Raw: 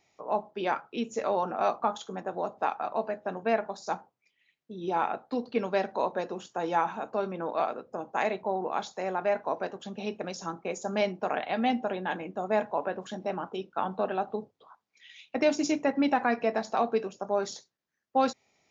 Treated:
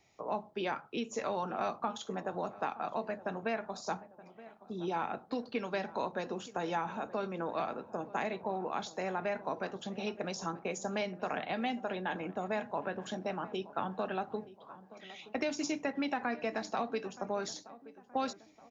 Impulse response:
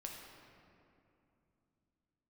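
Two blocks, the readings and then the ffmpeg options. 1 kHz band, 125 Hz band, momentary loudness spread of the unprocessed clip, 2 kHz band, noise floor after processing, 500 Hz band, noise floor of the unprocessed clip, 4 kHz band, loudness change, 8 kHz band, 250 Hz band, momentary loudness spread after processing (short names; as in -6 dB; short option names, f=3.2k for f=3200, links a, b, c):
-6.5 dB, -1.5 dB, 8 LU, -4.0 dB, -60 dBFS, -7.0 dB, -80 dBFS, -2.5 dB, -6.5 dB, n/a, -5.5 dB, 7 LU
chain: -filter_complex "[0:a]lowshelf=f=170:g=7.5,acrossover=split=290|1200[a][b][c];[a]acompressor=threshold=-43dB:ratio=4[d];[b]acompressor=threshold=-37dB:ratio=4[e];[c]acompressor=threshold=-38dB:ratio=4[f];[d][e][f]amix=inputs=3:normalize=0,asplit=2[g][h];[h]adelay=923,lowpass=f=1.5k:p=1,volume=-17dB,asplit=2[i][j];[j]adelay=923,lowpass=f=1.5k:p=1,volume=0.51,asplit=2[k][l];[l]adelay=923,lowpass=f=1.5k:p=1,volume=0.51,asplit=2[m][n];[n]adelay=923,lowpass=f=1.5k:p=1,volume=0.51[o];[g][i][k][m][o]amix=inputs=5:normalize=0"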